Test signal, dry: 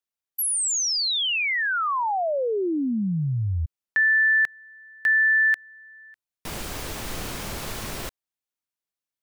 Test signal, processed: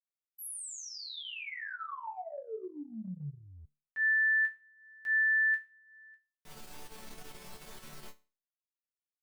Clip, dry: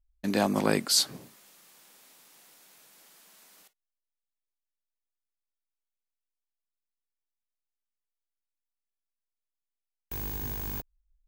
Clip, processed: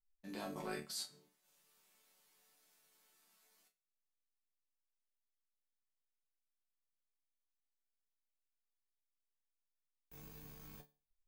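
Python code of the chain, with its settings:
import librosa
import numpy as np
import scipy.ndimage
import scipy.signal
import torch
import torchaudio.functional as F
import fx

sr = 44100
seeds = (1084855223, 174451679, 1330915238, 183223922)

y = fx.resonator_bank(x, sr, root=50, chord='major', decay_s=0.35)
y = fx.transient(y, sr, attack_db=-4, sustain_db=-8)
y = fx.dynamic_eq(y, sr, hz=5400.0, q=0.9, threshold_db=-47.0, ratio=4.0, max_db=-4)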